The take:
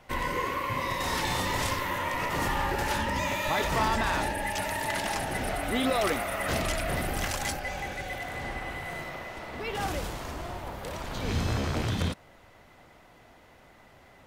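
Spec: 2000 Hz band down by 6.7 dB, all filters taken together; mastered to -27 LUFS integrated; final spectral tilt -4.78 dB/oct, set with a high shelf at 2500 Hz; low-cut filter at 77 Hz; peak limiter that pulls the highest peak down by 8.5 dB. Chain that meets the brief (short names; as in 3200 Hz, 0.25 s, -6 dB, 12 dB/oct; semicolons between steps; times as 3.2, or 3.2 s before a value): HPF 77 Hz; bell 2000 Hz -6 dB; high shelf 2500 Hz -4.5 dB; gain +8.5 dB; limiter -17 dBFS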